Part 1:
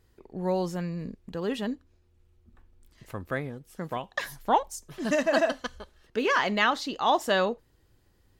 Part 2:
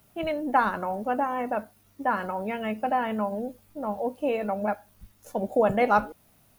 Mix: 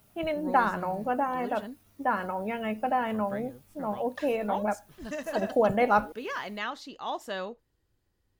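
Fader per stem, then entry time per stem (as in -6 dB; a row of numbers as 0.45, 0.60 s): -10.5, -1.5 dB; 0.00, 0.00 s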